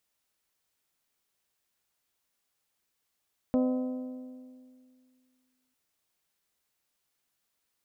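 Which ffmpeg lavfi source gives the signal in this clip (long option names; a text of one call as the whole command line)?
ffmpeg -f lavfi -i "aevalsrc='0.0794*pow(10,-3*t/2.23)*sin(2*PI*255*t)+0.0398*pow(10,-3*t/1.811)*sin(2*PI*510*t)+0.02*pow(10,-3*t/1.715)*sin(2*PI*612*t)+0.01*pow(10,-3*t/1.604)*sin(2*PI*765*t)+0.00501*pow(10,-3*t/1.471)*sin(2*PI*1020*t)+0.00251*pow(10,-3*t/1.376)*sin(2*PI*1275*t)':duration=2.2:sample_rate=44100" out.wav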